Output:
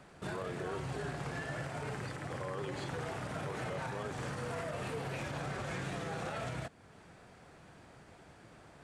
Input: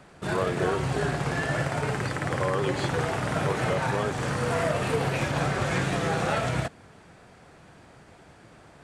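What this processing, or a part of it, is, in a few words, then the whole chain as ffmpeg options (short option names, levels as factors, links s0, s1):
stacked limiters: -af "alimiter=limit=0.112:level=0:latency=1:release=27,alimiter=level_in=1.19:limit=0.0631:level=0:latency=1:release=345,volume=0.841,volume=0.562"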